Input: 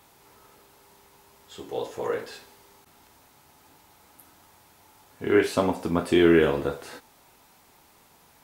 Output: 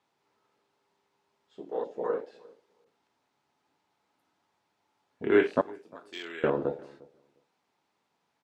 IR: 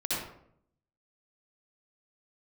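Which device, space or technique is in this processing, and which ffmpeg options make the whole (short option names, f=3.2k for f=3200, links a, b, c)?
over-cleaned archive recording: -filter_complex "[0:a]highpass=150,lowpass=5.1k,afwtdn=0.0224,asettb=1/sr,asplit=3[a][b][c];[a]atrim=end=5.614[d];[b]atrim=start=5.61:end=6.44,asetpts=PTS-STARTPTS,afade=t=in:d=0.004:c=qsin,afade=t=out:st=0.826:d=0.004:c=qsin,aderivative[e];[c]atrim=start=6.436[f];[d][e]acrossfade=d=0.004:c1=hsin:c2=qsin[g];[g][f]acrossfade=d=0.004:c1=qsin:c2=hsin,asplit=2[h][i];[i]adelay=352,lowpass=f=980:p=1,volume=-22dB,asplit=2[j][k];[k]adelay=352,lowpass=f=980:p=1,volume=0.16[l];[h][j][l]amix=inputs=3:normalize=0,volume=-1.5dB"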